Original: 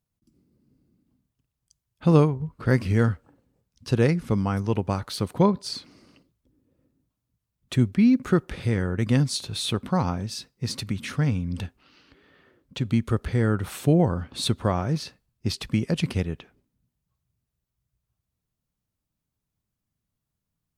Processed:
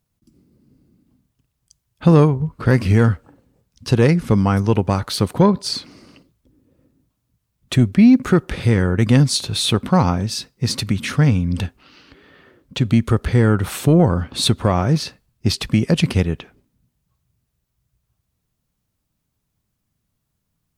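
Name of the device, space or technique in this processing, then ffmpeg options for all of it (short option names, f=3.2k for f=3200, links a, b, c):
soft clipper into limiter: -af "asoftclip=type=tanh:threshold=-8.5dB,alimiter=limit=-13.5dB:level=0:latency=1:release=137,volume=9dB"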